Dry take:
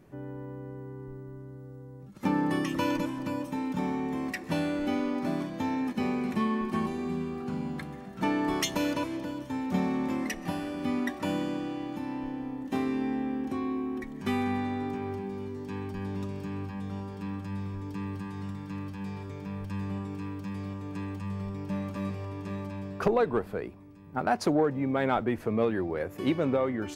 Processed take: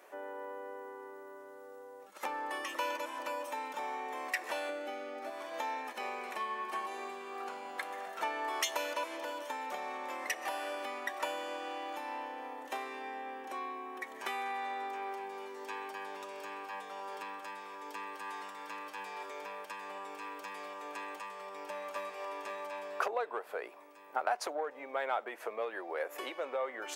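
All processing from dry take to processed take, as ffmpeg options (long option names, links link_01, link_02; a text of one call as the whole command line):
ffmpeg -i in.wav -filter_complex "[0:a]asettb=1/sr,asplit=3[link_01][link_02][link_03];[link_01]atrim=end=4.694[link_04];[link_02]atrim=start=4.69:end=5.3,asetpts=PTS-STARTPTS,afade=type=in:duration=0.004:curve=qsin,afade=type=out:start_time=0.606:duration=0.004:curve=qsin,asuperstop=centerf=1000:order=4:qfactor=7,lowshelf=frequency=430:gain=10[link_05];[link_03]atrim=start=5.296[link_06];[link_04][link_05]acrossfade=duration=0.004:curve1=hsin:curve2=qsin[link_07];[link_07][link_06]acrossfade=duration=0.004:curve1=qsin:curve2=hsin,equalizer=frequency=4600:width=2:gain=-3.5,acompressor=threshold=-36dB:ratio=6,highpass=frequency=540:width=0.5412,highpass=frequency=540:width=1.3066,volume=8dB" out.wav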